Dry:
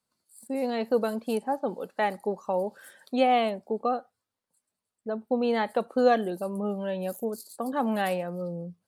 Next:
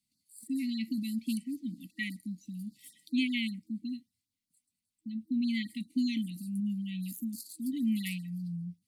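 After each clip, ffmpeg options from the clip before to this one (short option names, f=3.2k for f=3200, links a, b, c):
-af "afftfilt=real='re*(1-between(b*sr/4096,320,1900))':imag='im*(1-between(b*sr/4096,320,1900))':win_size=4096:overlap=0.75,afftfilt=real='re*(1-between(b*sr/1024,390*pow(2800/390,0.5+0.5*sin(2*PI*5.1*pts/sr))/1.41,390*pow(2800/390,0.5+0.5*sin(2*PI*5.1*pts/sr))*1.41))':imag='im*(1-between(b*sr/1024,390*pow(2800/390,0.5+0.5*sin(2*PI*5.1*pts/sr))/1.41,390*pow(2800/390,0.5+0.5*sin(2*PI*5.1*pts/sr))*1.41))':win_size=1024:overlap=0.75"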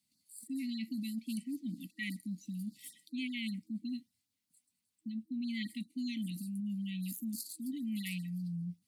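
-af "lowshelf=f=77:g=-10.5,areverse,acompressor=threshold=-39dB:ratio=6,areverse,volume=3dB"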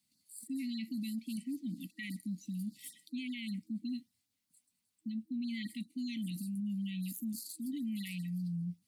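-af "alimiter=level_in=10dB:limit=-24dB:level=0:latency=1:release=29,volume=-10dB,volume=1.5dB"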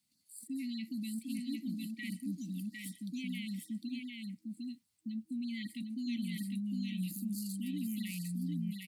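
-af "aecho=1:1:754:0.708,volume=-1dB"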